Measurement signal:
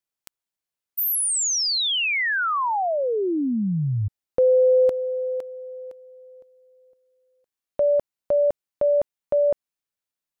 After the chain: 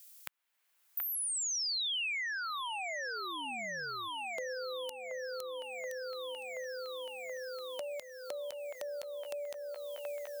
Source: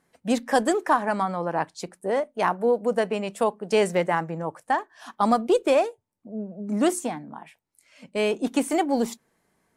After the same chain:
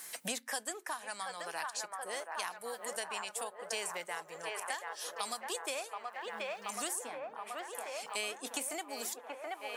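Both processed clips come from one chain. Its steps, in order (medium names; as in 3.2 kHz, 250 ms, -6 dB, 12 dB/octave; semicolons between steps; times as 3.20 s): differentiator; on a send: feedback echo behind a band-pass 728 ms, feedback 66%, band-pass 900 Hz, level -4 dB; on the sum: three bands compressed up and down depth 100%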